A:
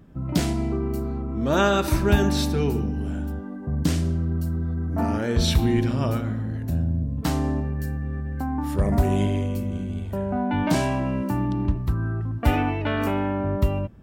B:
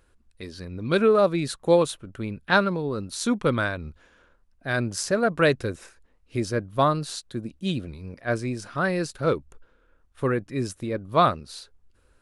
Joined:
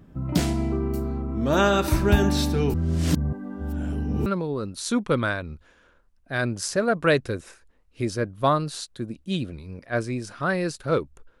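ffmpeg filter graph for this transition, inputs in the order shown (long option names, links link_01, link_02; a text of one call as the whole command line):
ffmpeg -i cue0.wav -i cue1.wav -filter_complex "[0:a]apad=whole_dur=11.4,atrim=end=11.4,asplit=2[link_01][link_02];[link_01]atrim=end=2.742[link_03];[link_02]atrim=start=2.738:end=4.262,asetpts=PTS-STARTPTS,areverse[link_04];[1:a]atrim=start=2.608:end=9.75[link_05];[link_03][link_04]acrossfade=duration=0.004:curve1=hsin:curve2=hsin[link_06];[link_06][link_05]acrossfade=duration=0.004:curve1=hsin:curve2=hsin" out.wav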